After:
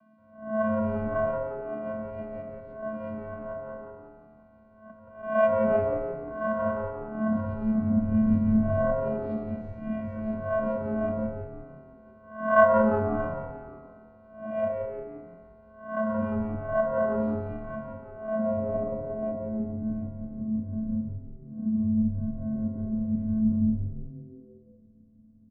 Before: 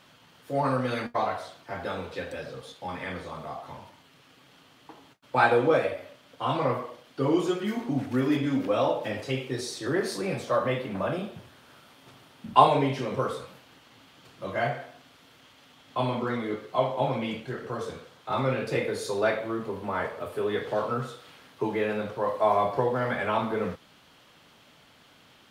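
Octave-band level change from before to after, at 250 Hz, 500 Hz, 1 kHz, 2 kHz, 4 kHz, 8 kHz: +4.5 dB, 0.0 dB, -5.0 dB, -3.5 dB, under -20 dB, under -30 dB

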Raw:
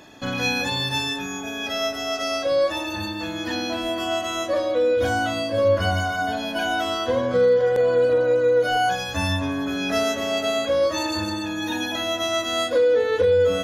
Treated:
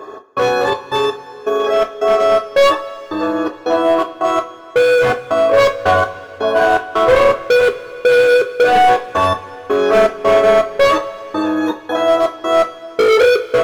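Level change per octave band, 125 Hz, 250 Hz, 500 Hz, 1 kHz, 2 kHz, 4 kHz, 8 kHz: -1.5 dB, +4.5 dB, +8.0 dB, +11.5 dB, +7.5 dB, +0.5 dB, no reading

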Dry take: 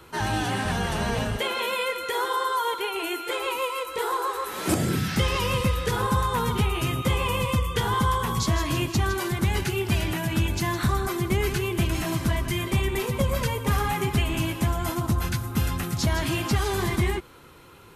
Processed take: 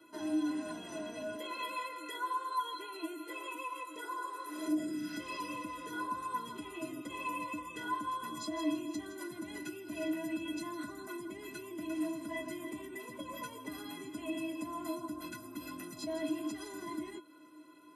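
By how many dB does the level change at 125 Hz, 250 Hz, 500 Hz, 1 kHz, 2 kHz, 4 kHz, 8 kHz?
-33.0 dB, -8.5 dB, -14.5 dB, -12.0 dB, -14.5 dB, -17.0 dB, -16.0 dB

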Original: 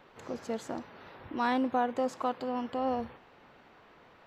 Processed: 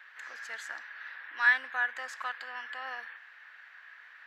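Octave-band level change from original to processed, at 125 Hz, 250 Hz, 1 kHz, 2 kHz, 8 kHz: under -40 dB, under -30 dB, -6.5 dB, +14.5 dB, no reading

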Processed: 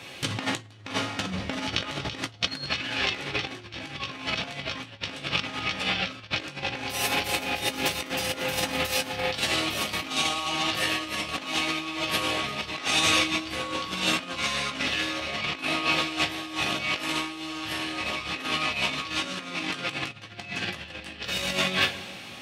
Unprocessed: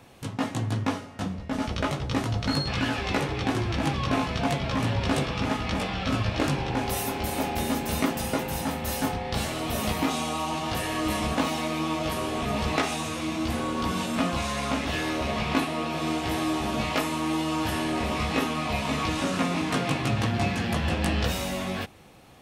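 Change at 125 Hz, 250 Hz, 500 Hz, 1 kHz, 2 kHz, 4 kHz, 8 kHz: -10.0 dB, -7.5 dB, -4.0 dB, -3.0 dB, +4.0 dB, +6.0 dB, +2.0 dB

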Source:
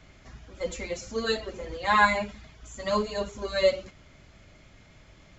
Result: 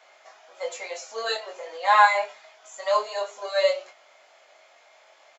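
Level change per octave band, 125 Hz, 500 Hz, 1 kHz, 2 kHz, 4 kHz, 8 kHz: under -35 dB, +1.5 dB, +5.5 dB, +2.0 dB, +2.0 dB, no reading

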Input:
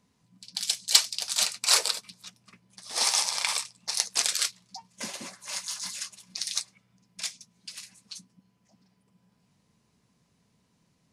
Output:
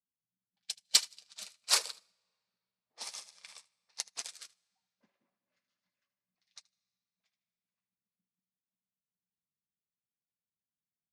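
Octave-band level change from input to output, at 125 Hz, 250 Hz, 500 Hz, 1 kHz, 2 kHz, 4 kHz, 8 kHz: under -15 dB, -16.5 dB, -11.0 dB, -11.5 dB, -10.5 dB, -9.5 dB, -10.0 dB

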